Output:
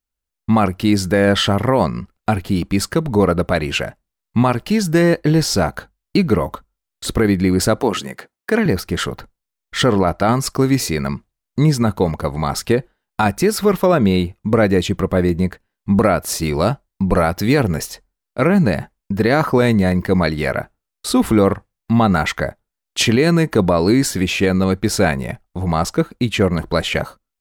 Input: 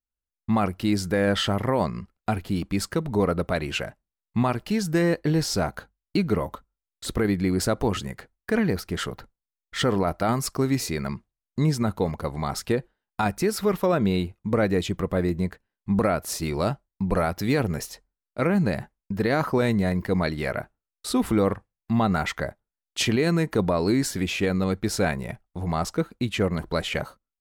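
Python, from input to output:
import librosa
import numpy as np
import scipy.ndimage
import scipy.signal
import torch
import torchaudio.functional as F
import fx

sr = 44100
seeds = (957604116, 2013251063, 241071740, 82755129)

y = fx.highpass(x, sr, hz=220.0, slope=12, at=(7.8, 8.66))
y = fx.high_shelf(y, sr, hz=12000.0, db=-10.5, at=(9.86, 10.47))
y = F.gain(torch.from_numpy(y), 8.0).numpy()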